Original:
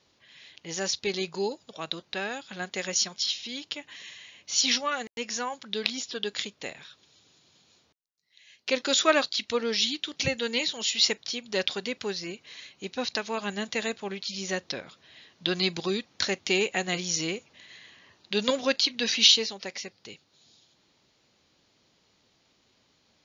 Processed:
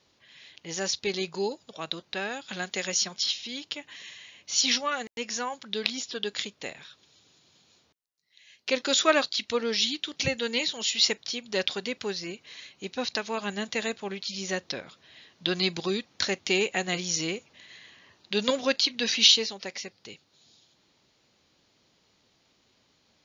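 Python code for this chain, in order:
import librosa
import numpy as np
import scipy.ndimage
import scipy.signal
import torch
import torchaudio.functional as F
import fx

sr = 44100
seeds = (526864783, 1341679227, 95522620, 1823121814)

y = fx.band_squash(x, sr, depth_pct=40, at=(2.48, 3.33))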